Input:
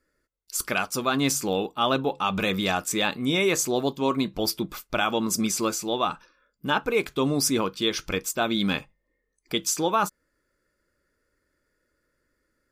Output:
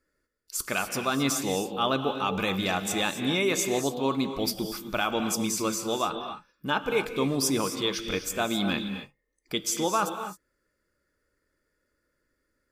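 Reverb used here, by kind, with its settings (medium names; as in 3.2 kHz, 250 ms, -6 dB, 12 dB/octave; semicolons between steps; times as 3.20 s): gated-style reverb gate 290 ms rising, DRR 7.5 dB; trim -3 dB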